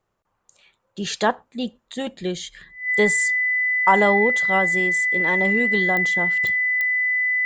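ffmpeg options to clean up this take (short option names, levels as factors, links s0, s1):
-af "adeclick=t=4,bandreject=f=2000:w=30"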